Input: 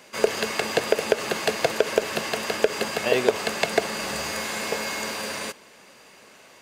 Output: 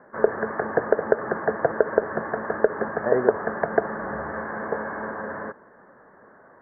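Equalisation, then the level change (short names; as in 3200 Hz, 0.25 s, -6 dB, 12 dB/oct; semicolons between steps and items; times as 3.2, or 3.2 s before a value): steep low-pass 1800 Hz 96 dB/oct; +1.5 dB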